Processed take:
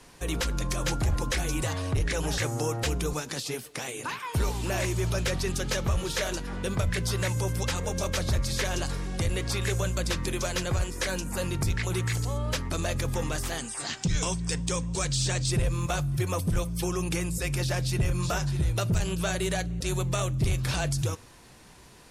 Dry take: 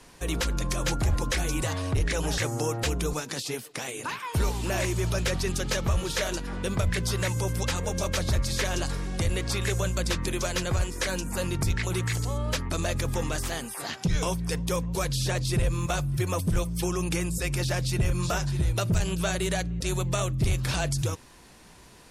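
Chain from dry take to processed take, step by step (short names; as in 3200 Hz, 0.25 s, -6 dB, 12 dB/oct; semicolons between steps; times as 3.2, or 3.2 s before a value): 13.58–15.51 EQ curve 290 Hz 0 dB, 490 Hz -4 dB, 5600 Hz +4 dB, 8300 Hz +9 dB, 13000 Hz -29 dB; in parallel at -8 dB: soft clip -21.5 dBFS, distortion -17 dB; on the sum: reverb, pre-delay 3 ms, DRR 17.5 dB; gain -3.5 dB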